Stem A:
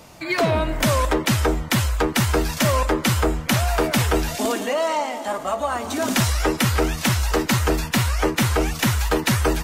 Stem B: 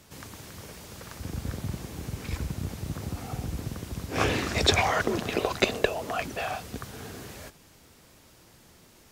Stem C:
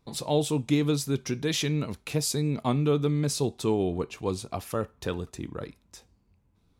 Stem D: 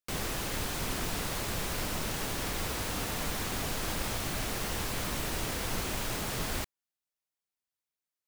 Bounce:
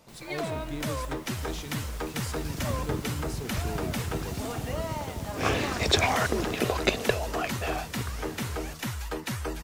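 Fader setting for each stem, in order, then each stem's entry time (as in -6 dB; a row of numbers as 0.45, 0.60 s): -13.5, -1.0, -13.0, -17.0 dB; 0.00, 1.25, 0.00, 0.00 s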